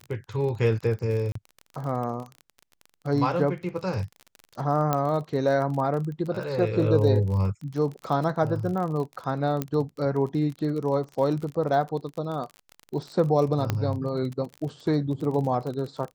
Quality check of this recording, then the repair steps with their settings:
crackle 32 per s -32 dBFS
1.32–1.35 s: dropout 34 ms
4.93 s: pop -10 dBFS
9.62 s: pop -13 dBFS
13.70 s: pop -11 dBFS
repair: de-click; interpolate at 1.32 s, 34 ms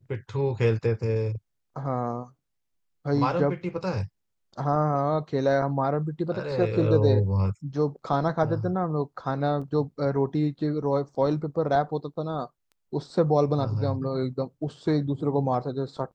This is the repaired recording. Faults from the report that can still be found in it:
9.62 s: pop

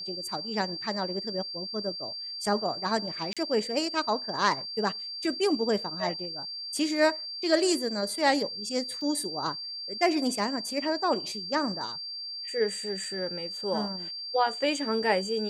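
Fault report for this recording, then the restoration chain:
whine 4.7 kHz -35 dBFS
3.33–3.37 s: dropout 36 ms
9.01 s: dropout 2.2 ms
13.04 s: dropout 2.6 ms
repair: band-stop 4.7 kHz, Q 30; interpolate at 3.33 s, 36 ms; interpolate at 9.01 s, 2.2 ms; interpolate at 13.04 s, 2.6 ms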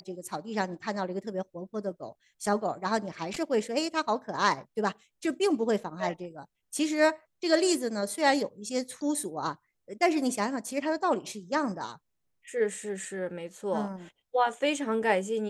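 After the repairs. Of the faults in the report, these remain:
nothing left

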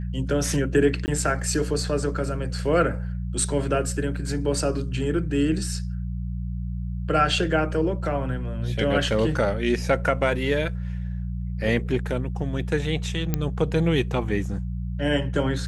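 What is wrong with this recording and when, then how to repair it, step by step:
hum 60 Hz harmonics 3 -29 dBFS
1.06–1.08 s: dropout 19 ms
13.34 s: pop -9 dBFS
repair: de-click; de-hum 60 Hz, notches 3; interpolate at 1.06 s, 19 ms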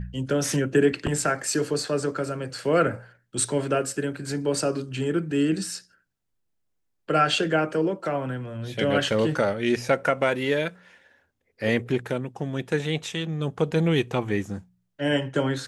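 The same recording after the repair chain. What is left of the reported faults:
nothing left

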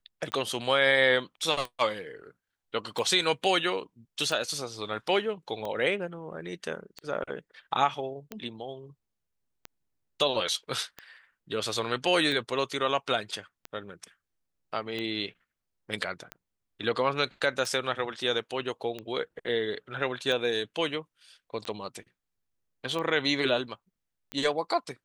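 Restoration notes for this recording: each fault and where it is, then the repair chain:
tick 45 rpm -21 dBFS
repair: de-click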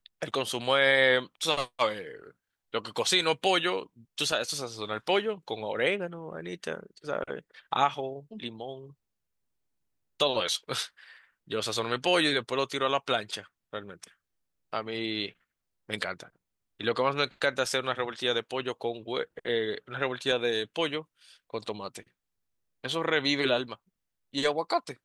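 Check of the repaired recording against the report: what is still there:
nothing left

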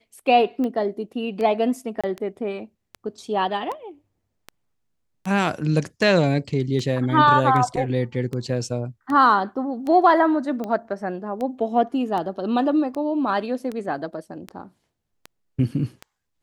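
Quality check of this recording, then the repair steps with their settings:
tick 78 rpm -18 dBFS
2.01–2.04 s: dropout 26 ms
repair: de-click; interpolate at 2.01 s, 26 ms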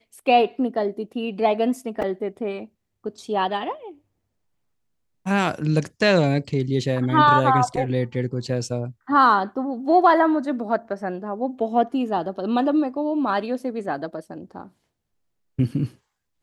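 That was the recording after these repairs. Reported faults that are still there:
nothing left

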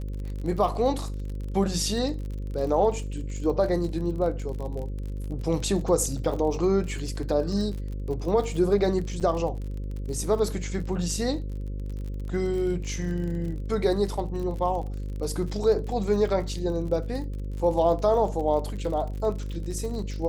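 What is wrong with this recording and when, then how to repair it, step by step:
buzz 50 Hz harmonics 11 -32 dBFS
crackle 46 per s -34 dBFS
9.20–9.21 s: dropout 7.8 ms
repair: de-click; de-hum 50 Hz, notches 11; interpolate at 9.20 s, 7.8 ms

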